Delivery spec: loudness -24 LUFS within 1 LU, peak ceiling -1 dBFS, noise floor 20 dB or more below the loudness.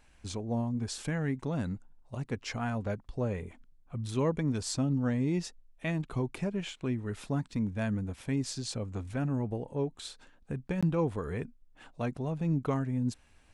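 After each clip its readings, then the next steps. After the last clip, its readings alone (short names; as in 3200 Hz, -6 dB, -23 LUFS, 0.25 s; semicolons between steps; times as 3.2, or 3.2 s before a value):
dropouts 1; longest dropout 16 ms; loudness -33.5 LUFS; peak -18.0 dBFS; loudness target -24.0 LUFS
-> interpolate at 10.81, 16 ms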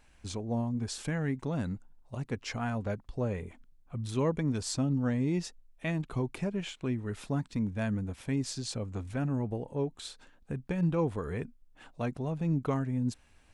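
dropouts 0; loudness -33.5 LUFS; peak -18.0 dBFS; loudness target -24.0 LUFS
-> gain +9.5 dB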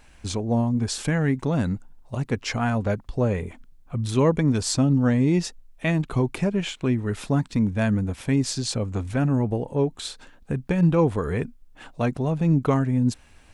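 loudness -24.0 LUFS; peak -8.5 dBFS; noise floor -52 dBFS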